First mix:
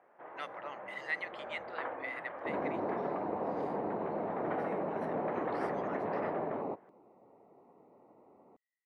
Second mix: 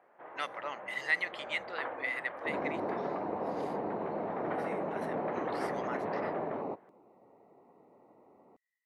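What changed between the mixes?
speech +5.0 dB
master: add high-shelf EQ 4,500 Hz +8.5 dB

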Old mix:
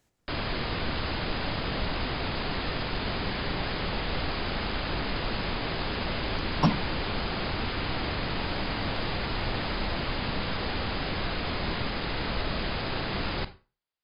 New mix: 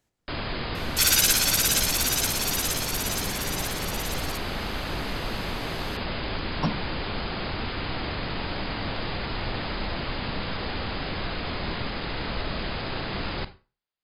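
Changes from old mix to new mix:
speech −4.0 dB
second sound: unmuted

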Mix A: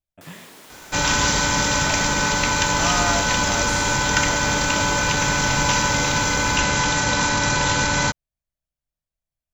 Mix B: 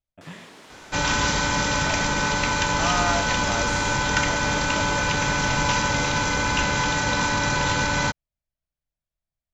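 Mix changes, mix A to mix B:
second sound: send −7.5 dB
master: add high-frequency loss of the air 68 metres

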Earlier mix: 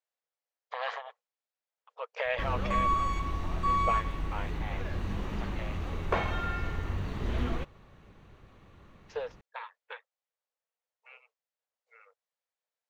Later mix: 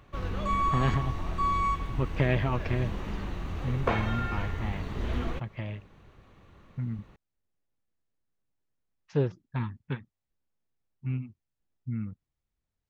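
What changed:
speech: remove linear-phase brick-wall high-pass 440 Hz
background: entry −2.25 s

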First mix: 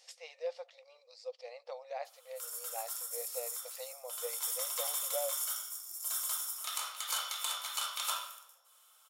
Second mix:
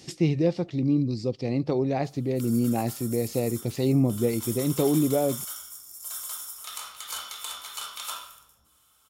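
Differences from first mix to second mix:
speech +11.0 dB
master: remove linear-phase brick-wall high-pass 470 Hz

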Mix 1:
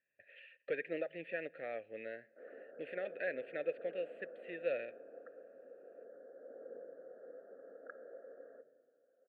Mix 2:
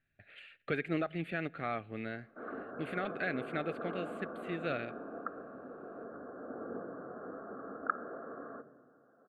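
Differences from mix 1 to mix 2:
speech −6.5 dB
master: remove formant filter e

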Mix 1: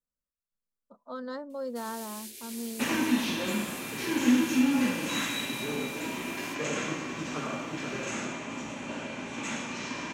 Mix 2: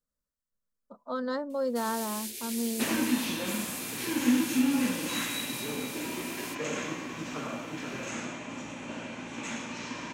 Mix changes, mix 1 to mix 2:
speech +5.5 dB
first sound +7.0 dB
reverb: off

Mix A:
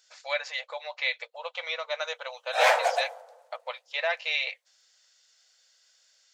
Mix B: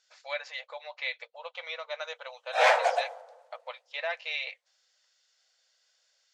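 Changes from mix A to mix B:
speech −4.5 dB
master: add high-frequency loss of the air 55 metres

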